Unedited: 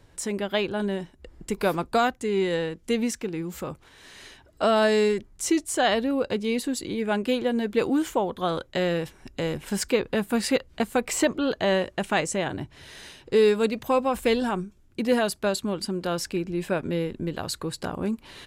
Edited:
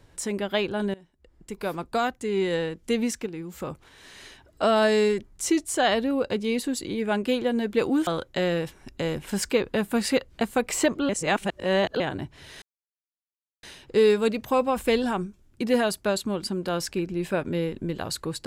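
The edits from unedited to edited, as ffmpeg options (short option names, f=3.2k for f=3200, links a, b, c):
-filter_complex "[0:a]asplit=8[a][b][c][d][e][f][g][h];[a]atrim=end=0.94,asetpts=PTS-STARTPTS,afade=t=out:st=0.936:d=0.004:c=hsin:silence=0.0891251[i];[b]atrim=start=0.94:end=3.262,asetpts=PTS-STARTPTS,afade=t=in:d=1.61:silence=0.0891251[j];[c]atrim=start=3.258:end=3.602,asetpts=PTS-STARTPTS,volume=-4.5dB[k];[d]atrim=start=3.598:end=8.072[l];[e]atrim=start=8.458:end=11.482[m];[f]atrim=start=11.478:end=12.392,asetpts=PTS-STARTPTS,areverse[n];[g]atrim=start=12.388:end=13.01,asetpts=PTS-STARTPTS,afade=t=out:st=0.618:d=0.004:c=hsin,apad=pad_dur=1.01[o];[h]atrim=start=13.01,asetpts=PTS-STARTPTS,afade=t=in:d=0.004:c=hsin[p];[i][j]concat=n=2:v=0:a=1[q];[q][k]acrossfade=d=0.004:c1=hsin:c2=hsin[r];[r][l]acrossfade=d=0.004:c1=hsin:c2=hsin[s];[s][m]acrossfade=d=0.004:c1=hsin:c2=hsin[t];[t][n]acrossfade=d=0.004:c1=hsin:c2=hsin[u];[o][p]concat=n=2:v=0:a=1[v];[u][v]acrossfade=d=0.004:c1=hsin:c2=hsin"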